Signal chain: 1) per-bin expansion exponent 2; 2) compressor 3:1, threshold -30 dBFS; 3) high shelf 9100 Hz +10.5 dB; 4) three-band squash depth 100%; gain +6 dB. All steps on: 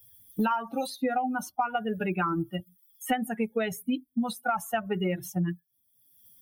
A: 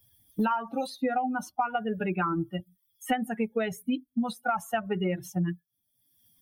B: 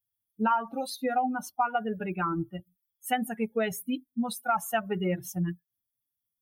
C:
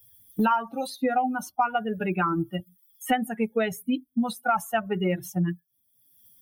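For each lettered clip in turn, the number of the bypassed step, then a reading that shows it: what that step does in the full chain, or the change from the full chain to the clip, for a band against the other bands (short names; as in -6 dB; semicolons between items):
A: 3, 8 kHz band -3.5 dB; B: 4, momentary loudness spread change +1 LU; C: 2, mean gain reduction 1.5 dB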